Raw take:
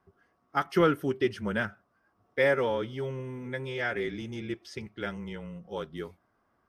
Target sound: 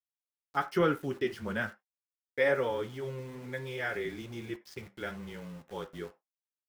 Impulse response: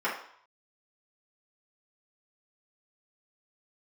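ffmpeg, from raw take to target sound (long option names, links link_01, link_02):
-filter_complex "[0:a]aeval=exprs='val(0)*gte(abs(val(0)),0.00562)':channel_layout=same,flanger=delay=6.7:depth=6.5:regen=-59:speed=1.1:shape=sinusoidal,asplit=2[link_01][link_02];[1:a]atrim=start_sample=2205,afade=type=out:start_time=0.15:duration=0.01,atrim=end_sample=7056[link_03];[link_02][link_03]afir=irnorm=-1:irlink=0,volume=-20.5dB[link_04];[link_01][link_04]amix=inputs=2:normalize=0"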